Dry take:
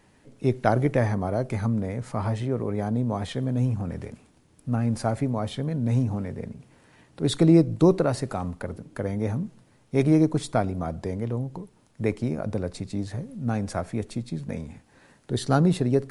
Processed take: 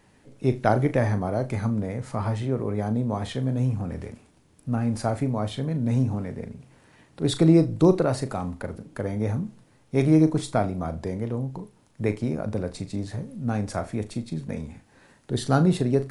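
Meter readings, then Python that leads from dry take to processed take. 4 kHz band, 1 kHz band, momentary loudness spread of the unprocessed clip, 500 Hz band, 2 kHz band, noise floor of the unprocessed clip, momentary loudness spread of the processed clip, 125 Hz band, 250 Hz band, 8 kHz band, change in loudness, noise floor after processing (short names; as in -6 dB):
+0.5 dB, +0.5 dB, 13 LU, +0.5 dB, +0.5 dB, -60 dBFS, 14 LU, +0.5 dB, +0.5 dB, +0.5 dB, +0.5 dB, -59 dBFS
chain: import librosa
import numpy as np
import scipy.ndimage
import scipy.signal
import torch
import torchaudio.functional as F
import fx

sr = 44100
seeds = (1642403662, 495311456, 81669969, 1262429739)

y = fx.room_flutter(x, sr, wall_m=6.5, rt60_s=0.21)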